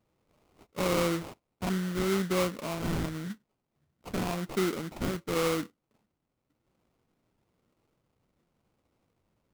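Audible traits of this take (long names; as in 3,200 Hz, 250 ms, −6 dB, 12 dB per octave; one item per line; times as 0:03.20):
phaser sweep stages 4, 0.93 Hz, lowest notch 730–2,500 Hz
aliases and images of a low sample rate 1,700 Hz, jitter 20%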